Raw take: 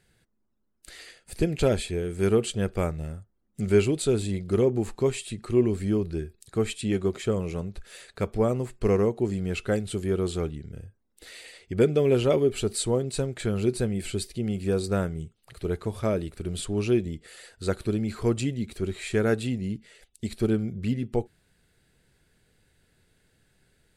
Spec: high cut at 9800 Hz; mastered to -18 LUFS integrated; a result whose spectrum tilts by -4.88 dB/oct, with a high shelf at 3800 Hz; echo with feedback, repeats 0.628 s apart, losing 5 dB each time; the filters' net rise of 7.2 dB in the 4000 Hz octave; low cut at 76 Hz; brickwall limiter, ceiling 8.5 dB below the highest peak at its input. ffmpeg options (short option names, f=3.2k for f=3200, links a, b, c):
-af "highpass=76,lowpass=9.8k,highshelf=f=3.8k:g=6.5,equalizer=f=4k:t=o:g=5,alimiter=limit=-18dB:level=0:latency=1,aecho=1:1:628|1256|1884|2512|3140|3768|4396:0.562|0.315|0.176|0.0988|0.0553|0.031|0.0173,volume=10dB"